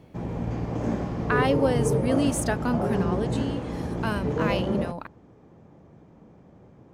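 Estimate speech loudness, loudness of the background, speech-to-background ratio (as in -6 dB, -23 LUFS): -28.5 LUFS, -28.0 LUFS, -0.5 dB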